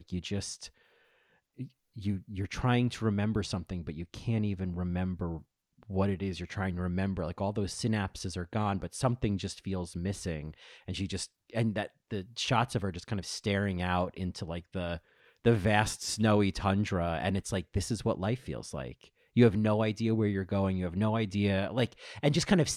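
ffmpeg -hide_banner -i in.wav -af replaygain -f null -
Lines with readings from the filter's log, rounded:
track_gain = +12.1 dB
track_peak = 0.239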